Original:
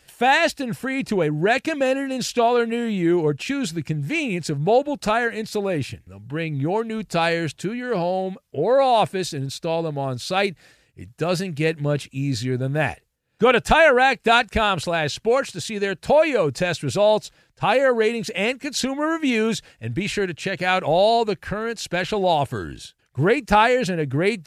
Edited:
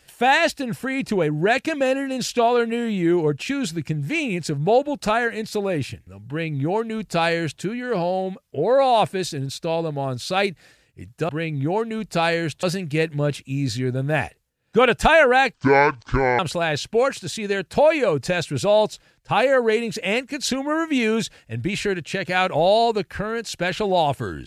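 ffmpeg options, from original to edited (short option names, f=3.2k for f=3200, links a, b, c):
-filter_complex "[0:a]asplit=5[a][b][c][d][e];[a]atrim=end=11.292[f];[b]atrim=start=6.278:end=7.622[g];[c]atrim=start=11.288:end=14.204[h];[d]atrim=start=14.2:end=14.71,asetpts=PTS-STARTPTS,asetrate=26460,aresample=44100[i];[e]atrim=start=14.706[j];[f][g]acrossfade=d=0.004:c1=hsin:c2=hsin[k];[k][h]acrossfade=d=0.004:c1=hsin:c2=hsin[l];[l][i]acrossfade=d=0.004:c1=hsin:c2=hsin[m];[m][j]acrossfade=d=0.004:c1=hsin:c2=hsin"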